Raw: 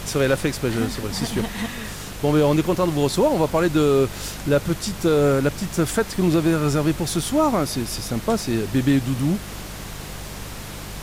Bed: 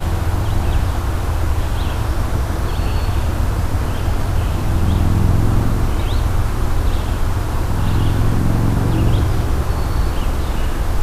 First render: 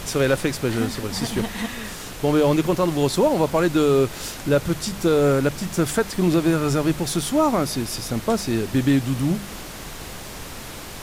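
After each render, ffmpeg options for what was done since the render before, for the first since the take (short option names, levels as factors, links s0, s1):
-af "bandreject=f=50:t=h:w=4,bandreject=f=100:t=h:w=4,bandreject=f=150:t=h:w=4,bandreject=f=200:t=h:w=4"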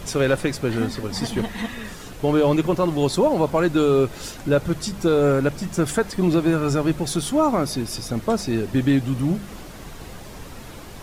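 -af "afftdn=nr=8:nf=-36"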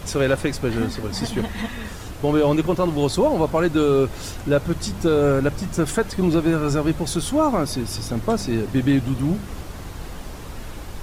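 -filter_complex "[1:a]volume=0.126[s0];[0:a][s0]amix=inputs=2:normalize=0"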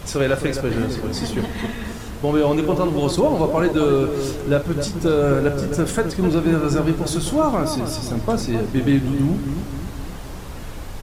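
-filter_complex "[0:a]asplit=2[s0][s1];[s1]adelay=43,volume=0.266[s2];[s0][s2]amix=inputs=2:normalize=0,asplit=2[s3][s4];[s4]adelay=262,lowpass=f=1100:p=1,volume=0.447,asplit=2[s5][s6];[s6]adelay=262,lowpass=f=1100:p=1,volume=0.48,asplit=2[s7][s8];[s8]adelay=262,lowpass=f=1100:p=1,volume=0.48,asplit=2[s9][s10];[s10]adelay=262,lowpass=f=1100:p=1,volume=0.48,asplit=2[s11][s12];[s12]adelay=262,lowpass=f=1100:p=1,volume=0.48,asplit=2[s13][s14];[s14]adelay=262,lowpass=f=1100:p=1,volume=0.48[s15];[s3][s5][s7][s9][s11][s13][s15]amix=inputs=7:normalize=0"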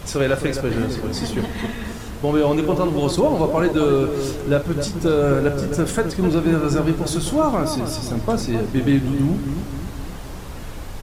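-af anull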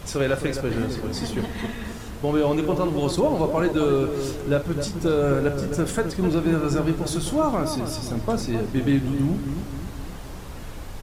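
-af "volume=0.668"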